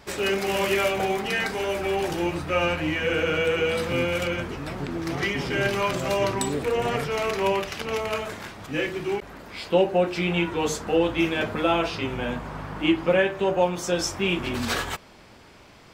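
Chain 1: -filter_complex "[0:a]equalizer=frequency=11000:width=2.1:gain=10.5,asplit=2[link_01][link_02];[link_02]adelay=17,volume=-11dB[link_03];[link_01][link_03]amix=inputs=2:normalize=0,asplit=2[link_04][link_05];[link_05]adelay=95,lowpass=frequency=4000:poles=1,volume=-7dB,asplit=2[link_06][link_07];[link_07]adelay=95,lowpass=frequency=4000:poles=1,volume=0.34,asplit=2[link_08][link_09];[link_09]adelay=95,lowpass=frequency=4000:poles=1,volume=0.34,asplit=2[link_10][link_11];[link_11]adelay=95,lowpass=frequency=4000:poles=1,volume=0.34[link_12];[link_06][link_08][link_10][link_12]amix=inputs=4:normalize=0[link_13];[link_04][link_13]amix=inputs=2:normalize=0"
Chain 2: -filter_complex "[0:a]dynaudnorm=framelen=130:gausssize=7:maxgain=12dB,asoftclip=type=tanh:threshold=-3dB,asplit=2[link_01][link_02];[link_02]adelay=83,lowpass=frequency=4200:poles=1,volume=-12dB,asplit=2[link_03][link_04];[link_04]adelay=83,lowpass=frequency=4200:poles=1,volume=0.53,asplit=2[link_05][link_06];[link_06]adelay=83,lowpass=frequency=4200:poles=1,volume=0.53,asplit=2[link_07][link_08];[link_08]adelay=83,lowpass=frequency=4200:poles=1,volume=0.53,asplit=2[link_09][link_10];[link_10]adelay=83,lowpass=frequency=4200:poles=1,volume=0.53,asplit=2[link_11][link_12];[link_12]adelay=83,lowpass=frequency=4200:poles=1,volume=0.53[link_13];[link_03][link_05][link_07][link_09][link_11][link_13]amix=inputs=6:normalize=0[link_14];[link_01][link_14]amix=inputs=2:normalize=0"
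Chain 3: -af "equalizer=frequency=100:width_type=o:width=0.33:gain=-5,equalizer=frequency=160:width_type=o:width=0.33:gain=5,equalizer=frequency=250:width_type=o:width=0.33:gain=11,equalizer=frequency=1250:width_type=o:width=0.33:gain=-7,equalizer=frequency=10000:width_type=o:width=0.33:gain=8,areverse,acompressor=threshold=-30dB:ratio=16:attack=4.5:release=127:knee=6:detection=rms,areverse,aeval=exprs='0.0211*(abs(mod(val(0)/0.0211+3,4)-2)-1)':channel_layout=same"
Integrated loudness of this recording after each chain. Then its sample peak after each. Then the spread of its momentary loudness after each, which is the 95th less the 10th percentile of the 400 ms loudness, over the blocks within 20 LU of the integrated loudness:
−24.0, −16.5, −38.5 LKFS; −6.0, −3.5, −33.5 dBFS; 8, 7, 2 LU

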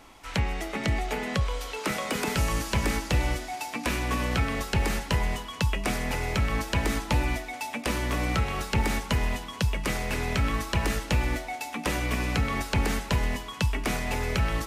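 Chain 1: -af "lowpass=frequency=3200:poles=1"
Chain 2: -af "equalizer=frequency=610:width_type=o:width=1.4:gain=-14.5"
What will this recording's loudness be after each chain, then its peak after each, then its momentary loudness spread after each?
−29.5, −30.5 LKFS; −14.5, −14.0 dBFS; 4, 5 LU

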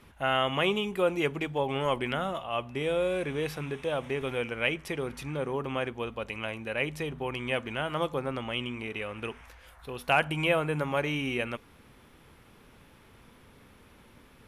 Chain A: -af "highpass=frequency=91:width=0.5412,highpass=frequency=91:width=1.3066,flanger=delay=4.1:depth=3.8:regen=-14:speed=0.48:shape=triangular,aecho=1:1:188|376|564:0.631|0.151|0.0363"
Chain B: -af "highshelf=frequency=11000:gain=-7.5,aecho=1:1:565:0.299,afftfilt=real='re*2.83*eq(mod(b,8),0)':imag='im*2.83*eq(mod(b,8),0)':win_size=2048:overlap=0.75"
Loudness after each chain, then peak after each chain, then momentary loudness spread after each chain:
−32.5, −32.0 LKFS; −13.0, −9.5 dBFS; 9, 12 LU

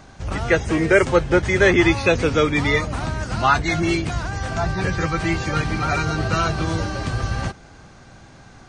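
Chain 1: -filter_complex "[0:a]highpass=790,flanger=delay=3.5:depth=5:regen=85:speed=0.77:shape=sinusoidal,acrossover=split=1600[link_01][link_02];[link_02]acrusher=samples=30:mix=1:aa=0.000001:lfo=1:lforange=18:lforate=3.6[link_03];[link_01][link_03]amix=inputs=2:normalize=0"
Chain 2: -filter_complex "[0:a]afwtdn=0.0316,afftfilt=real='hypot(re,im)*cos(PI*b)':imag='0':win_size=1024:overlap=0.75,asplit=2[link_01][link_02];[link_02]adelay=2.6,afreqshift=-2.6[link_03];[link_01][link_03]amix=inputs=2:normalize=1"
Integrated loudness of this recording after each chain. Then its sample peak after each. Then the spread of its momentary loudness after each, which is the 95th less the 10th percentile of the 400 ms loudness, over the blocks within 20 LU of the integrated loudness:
−32.0, −26.5 LKFS; −11.5, −6.5 dBFS; 11, 13 LU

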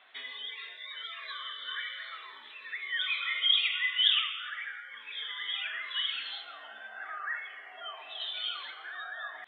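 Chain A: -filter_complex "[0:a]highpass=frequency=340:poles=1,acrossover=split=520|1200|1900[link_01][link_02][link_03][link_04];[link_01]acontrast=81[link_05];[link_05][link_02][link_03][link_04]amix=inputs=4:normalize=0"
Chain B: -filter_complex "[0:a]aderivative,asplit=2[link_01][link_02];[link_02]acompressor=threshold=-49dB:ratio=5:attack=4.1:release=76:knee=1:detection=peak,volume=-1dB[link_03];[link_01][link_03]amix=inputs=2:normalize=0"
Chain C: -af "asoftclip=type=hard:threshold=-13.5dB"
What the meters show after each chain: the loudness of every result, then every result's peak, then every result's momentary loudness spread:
−32.0, −37.5, −31.5 LKFS; −11.5, −17.5, −13.5 dBFS; 18, 18, 18 LU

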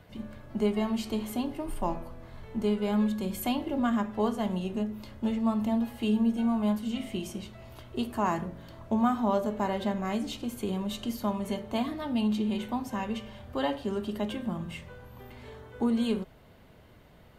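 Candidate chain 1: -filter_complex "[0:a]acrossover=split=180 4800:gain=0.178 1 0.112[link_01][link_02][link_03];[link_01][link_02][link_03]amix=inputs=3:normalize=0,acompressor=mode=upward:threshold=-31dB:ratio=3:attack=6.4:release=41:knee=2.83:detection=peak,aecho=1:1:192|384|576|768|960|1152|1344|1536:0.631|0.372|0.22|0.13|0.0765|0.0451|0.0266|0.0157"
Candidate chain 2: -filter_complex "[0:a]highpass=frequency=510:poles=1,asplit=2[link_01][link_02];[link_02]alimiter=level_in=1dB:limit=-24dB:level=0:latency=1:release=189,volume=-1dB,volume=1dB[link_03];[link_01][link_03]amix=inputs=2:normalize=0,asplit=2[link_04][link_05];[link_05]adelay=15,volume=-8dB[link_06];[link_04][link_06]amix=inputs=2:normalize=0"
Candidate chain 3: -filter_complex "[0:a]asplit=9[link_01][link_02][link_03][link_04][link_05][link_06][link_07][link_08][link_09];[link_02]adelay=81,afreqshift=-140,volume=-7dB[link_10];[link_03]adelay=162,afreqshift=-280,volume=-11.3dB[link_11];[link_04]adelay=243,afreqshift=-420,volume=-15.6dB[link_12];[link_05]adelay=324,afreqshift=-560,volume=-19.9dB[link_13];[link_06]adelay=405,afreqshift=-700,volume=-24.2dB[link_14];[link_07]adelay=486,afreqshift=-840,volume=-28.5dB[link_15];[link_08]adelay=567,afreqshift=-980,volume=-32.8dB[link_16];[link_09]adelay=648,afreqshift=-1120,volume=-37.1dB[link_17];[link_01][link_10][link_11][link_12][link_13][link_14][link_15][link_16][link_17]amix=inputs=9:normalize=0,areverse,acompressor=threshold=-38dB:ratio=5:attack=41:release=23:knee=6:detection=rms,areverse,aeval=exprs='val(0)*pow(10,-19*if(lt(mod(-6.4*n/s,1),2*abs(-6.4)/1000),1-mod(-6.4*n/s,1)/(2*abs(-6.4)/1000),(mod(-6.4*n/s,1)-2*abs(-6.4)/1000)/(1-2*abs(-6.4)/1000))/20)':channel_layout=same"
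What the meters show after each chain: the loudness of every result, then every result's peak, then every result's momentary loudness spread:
−30.0, −30.0, −44.0 LKFS; −13.5, −12.0, −25.5 dBFS; 9, 13, 9 LU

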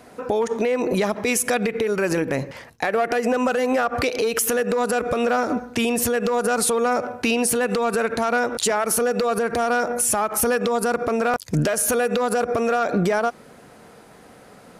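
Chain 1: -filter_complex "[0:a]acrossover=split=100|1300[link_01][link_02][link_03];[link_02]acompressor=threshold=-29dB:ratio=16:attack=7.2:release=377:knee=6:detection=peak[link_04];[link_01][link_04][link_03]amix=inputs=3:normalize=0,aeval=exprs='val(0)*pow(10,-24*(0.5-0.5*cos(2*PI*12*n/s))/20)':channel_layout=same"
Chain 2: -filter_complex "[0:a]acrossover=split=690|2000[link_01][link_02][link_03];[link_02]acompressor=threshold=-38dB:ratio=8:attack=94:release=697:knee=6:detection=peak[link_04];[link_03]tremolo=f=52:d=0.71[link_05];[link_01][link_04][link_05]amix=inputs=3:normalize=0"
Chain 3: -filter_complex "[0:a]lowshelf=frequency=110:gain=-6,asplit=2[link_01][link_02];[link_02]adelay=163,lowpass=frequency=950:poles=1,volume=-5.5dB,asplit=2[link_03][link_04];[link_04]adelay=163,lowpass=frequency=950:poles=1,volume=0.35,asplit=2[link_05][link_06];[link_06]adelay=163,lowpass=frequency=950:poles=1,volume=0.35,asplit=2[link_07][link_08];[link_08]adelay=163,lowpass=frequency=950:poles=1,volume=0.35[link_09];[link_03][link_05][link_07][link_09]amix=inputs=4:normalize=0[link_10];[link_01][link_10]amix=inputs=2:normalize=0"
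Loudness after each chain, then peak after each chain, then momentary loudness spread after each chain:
−32.5, −23.5, −21.5 LKFS; −10.0, −7.5, −8.5 dBFS; 9, 3, 3 LU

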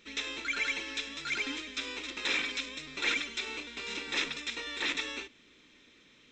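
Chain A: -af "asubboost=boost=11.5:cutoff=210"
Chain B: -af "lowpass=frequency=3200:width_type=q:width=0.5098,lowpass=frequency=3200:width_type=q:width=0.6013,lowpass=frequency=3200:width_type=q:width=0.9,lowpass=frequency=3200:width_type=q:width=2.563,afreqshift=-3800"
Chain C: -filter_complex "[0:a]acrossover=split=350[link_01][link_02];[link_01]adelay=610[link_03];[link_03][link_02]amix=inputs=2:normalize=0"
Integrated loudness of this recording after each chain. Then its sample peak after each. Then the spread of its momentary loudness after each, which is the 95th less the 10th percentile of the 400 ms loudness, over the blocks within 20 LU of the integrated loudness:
−33.5, −35.5, −33.5 LKFS; −15.0, −17.5, −17.0 dBFS; 7, 8, 8 LU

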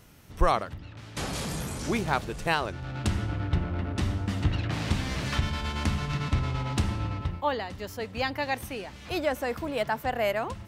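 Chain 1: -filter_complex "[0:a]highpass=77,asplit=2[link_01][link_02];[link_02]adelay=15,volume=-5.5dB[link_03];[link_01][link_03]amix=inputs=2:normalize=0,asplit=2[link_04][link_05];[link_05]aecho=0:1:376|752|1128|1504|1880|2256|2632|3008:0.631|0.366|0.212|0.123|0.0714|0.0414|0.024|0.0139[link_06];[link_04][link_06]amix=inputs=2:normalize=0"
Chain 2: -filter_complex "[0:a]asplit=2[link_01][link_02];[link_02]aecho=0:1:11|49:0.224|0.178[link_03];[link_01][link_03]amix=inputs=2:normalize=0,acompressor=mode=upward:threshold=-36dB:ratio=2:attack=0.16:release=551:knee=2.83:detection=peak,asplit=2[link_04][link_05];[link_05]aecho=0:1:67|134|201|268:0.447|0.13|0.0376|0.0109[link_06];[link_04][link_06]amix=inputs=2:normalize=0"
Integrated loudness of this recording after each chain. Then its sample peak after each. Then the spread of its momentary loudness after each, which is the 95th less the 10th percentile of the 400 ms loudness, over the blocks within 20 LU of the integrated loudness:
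−27.5, −29.0 LKFS; −8.0, −9.0 dBFS; 4, 6 LU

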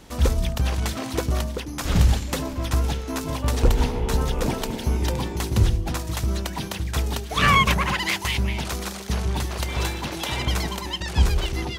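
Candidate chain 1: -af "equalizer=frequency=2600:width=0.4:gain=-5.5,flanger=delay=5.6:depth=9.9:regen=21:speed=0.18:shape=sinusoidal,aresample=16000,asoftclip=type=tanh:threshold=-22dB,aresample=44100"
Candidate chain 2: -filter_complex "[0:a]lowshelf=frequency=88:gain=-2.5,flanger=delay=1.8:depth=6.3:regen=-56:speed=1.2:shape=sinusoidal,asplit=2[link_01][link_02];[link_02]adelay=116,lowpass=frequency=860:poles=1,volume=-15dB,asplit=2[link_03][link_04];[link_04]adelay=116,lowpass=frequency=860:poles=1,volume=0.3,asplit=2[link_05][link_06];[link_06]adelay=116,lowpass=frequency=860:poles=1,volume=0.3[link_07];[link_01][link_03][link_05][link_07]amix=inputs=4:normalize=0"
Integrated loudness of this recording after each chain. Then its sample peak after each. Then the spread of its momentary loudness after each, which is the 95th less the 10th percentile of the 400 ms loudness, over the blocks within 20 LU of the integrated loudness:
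−32.0, −29.5 LKFS; −21.5, −11.0 dBFS; 6, 7 LU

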